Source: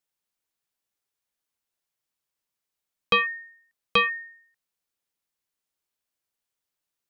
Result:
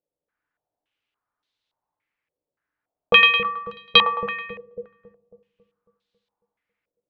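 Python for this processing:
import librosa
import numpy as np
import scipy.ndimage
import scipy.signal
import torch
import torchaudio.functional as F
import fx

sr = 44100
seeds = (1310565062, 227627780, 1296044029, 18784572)

y = fx.echo_split(x, sr, split_hz=530.0, low_ms=274, high_ms=108, feedback_pct=52, wet_db=-5)
y = fx.rev_fdn(y, sr, rt60_s=0.49, lf_ratio=1.25, hf_ratio=0.35, size_ms=20.0, drr_db=8.5)
y = fx.filter_held_lowpass(y, sr, hz=3.5, low_hz=520.0, high_hz=3800.0)
y = y * 10.0 ** (2.0 / 20.0)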